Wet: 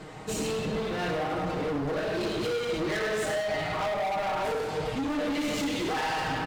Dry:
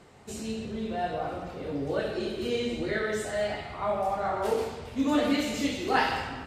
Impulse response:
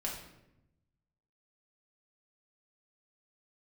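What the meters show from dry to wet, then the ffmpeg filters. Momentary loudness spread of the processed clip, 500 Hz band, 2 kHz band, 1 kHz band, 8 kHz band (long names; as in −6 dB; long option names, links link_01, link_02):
2 LU, +0.5 dB, +1.0 dB, 0.0 dB, +3.0 dB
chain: -filter_complex "[0:a]highshelf=frequency=5400:gain=-5.5,aecho=1:1:6.4:0.85,acompressor=threshold=-30dB:ratio=6,asoftclip=type=hard:threshold=-37dB,asplit=2[link_01][link_02];[link_02]aecho=0:1:102:0.335[link_03];[link_01][link_03]amix=inputs=2:normalize=0,volume=9dB"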